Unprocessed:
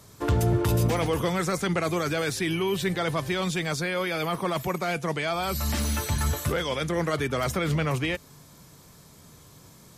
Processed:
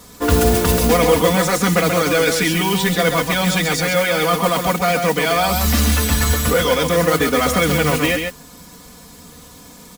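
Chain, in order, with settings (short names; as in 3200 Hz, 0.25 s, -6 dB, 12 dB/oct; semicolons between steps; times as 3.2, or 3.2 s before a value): on a send: echo 0.134 s -5.5 dB; on the sum: modulation noise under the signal 14 dB; comb 4.1 ms, depth 91%; gain +7.5 dB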